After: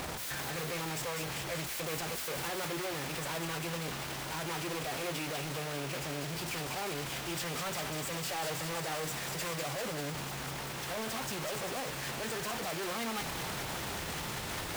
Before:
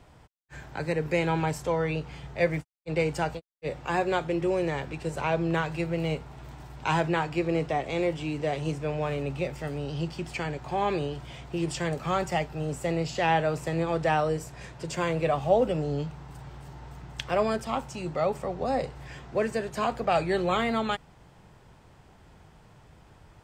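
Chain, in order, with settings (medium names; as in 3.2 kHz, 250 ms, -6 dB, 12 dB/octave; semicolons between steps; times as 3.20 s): one-bit comparator; bass shelf 100 Hz -10.5 dB; de-hum 60.02 Hz, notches 18; peak limiter -28 dBFS, peak gain reduction 5.5 dB; time stretch by phase-locked vocoder 0.63×; feedback echo behind a high-pass 197 ms, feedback 74%, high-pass 1.6 kHz, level -4.5 dB; trim -2.5 dB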